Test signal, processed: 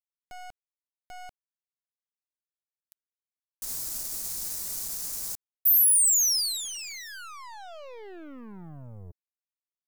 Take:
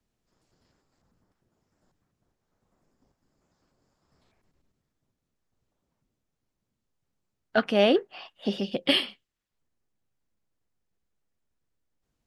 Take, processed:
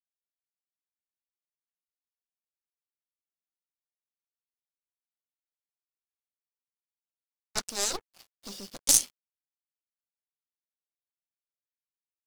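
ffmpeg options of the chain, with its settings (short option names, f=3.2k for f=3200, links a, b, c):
-af "aeval=exprs='0.398*(cos(1*acos(clip(val(0)/0.398,-1,1)))-cos(1*PI/2))+0.00562*(cos(5*acos(clip(val(0)/0.398,-1,1)))-cos(5*PI/2))+0.158*(cos(6*acos(clip(val(0)/0.398,-1,1)))-cos(6*PI/2))+0.126*(cos(7*acos(clip(val(0)/0.398,-1,1)))-cos(7*PI/2))+0.0562*(cos(8*acos(clip(val(0)/0.398,-1,1)))-cos(8*PI/2))':c=same,aexciter=amount=15.2:drive=1.1:freq=4.5k,acrusher=bits=4:mix=0:aa=0.5,volume=-14dB"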